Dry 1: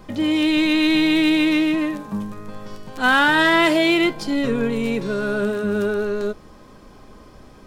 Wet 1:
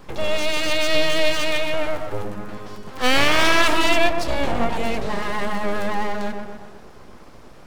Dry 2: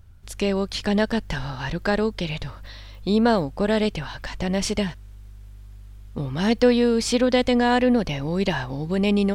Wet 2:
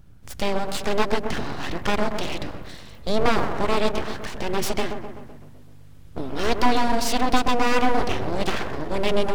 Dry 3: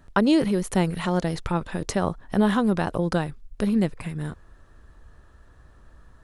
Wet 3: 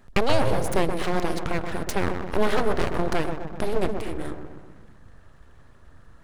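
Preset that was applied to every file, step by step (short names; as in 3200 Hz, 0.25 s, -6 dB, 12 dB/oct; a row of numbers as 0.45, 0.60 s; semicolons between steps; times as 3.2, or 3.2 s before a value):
dark delay 0.127 s, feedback 56%, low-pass 1300 Hz, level -6 dB; full-wave rectifier; gain +1 dB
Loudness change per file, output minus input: -2.5, -2.0, -2.0 LU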